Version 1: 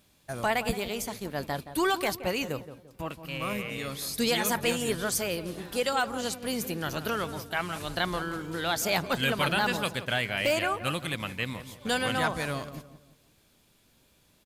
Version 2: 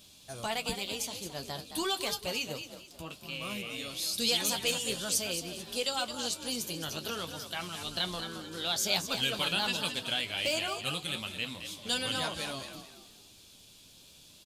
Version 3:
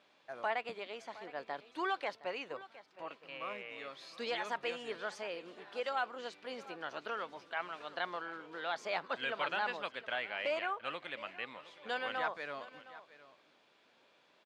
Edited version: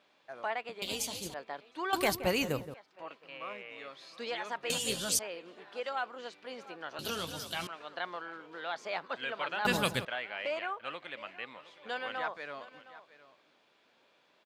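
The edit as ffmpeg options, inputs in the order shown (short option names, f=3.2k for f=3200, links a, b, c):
-filter_complex "[1:a]asplit=3[a][b][c];[0:a]asplit=2[d][e];[2:a]asplit=6[f][g][h][i][j][k];[f]atrim=end=0.822[l];[a]atrim=start=0.818:end=1.342[m];[g]atrim=start=1.338:end=1.932[n];[d]atrim=start=1.928:end=2.742[o];[h]atrim=start=2.738:end=4.702[p];[b]atrim=start=4.698:end=5.192[q];[i]atrim=start=5.188:end=6.992[r];[c]atrim=start=6.988:end=7.672[s];[j]atrim=start=7.668:end=9.652[t];[e]atrim=start=9.648:end=10.052[u];[k]atrim=start=10.048[v];[l][m]acrossfade=d=0.004:c1=hsin:c2=hsin[w];[w][n]acrossfade=d=0.004:c1=hsin:c2=hsin[x];[x][o]acrossfade=d=0.004:c1=hsin:c2=hsin[y];[y][p]acrossfade=d=0.004:c1=hsin:c2=hsin[z];[z][q]acrossfade=d=0.004:c1=hsin:c2=hsin[aa];[aa][r]acrossfade=d=0.004:c1=hsin:c2=hsin[ab];[ab][s]acrossfade=d=0.004:c1=hsin:c2=hsin[ac];[ac][t]acrossfade=d=0.004:c1=hsin:c2=hsin[ad];[ad][u]acrossfade=d=0.004:c1=hsin:c2=hsin[ae];[ae][v]acrossfade=d=0.004:c1=hsin:c2=hsin"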